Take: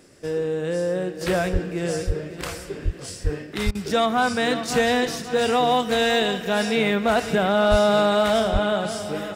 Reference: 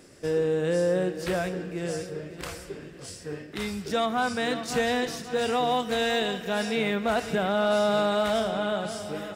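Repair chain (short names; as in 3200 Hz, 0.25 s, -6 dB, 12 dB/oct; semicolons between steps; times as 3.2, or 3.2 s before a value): de-plosive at 1.52/2.06/2.84/3.23/3.65/7.7/8.52; interpolate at 3.71, 39 ms; gain 0 dB, from 1.21 s -5.5 dB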